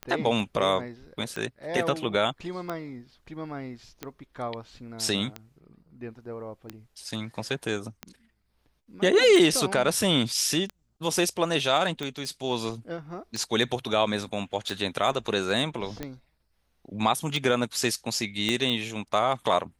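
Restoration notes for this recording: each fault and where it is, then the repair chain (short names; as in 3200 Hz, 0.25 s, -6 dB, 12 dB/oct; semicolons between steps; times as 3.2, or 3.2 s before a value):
tick 45 rpm -18 dBFS
12.25 pop
18.49 pop -13 dBFS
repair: de-click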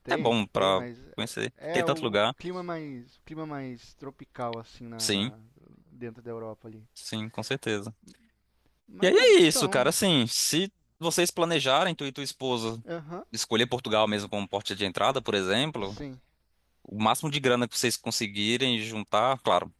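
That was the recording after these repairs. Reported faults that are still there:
18.49 pop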